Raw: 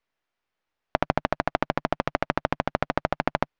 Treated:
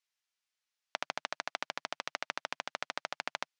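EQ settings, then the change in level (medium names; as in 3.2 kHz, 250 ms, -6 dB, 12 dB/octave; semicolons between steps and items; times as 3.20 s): band-pass filter 6.7 kHz, Q 1.1; +5.0 dB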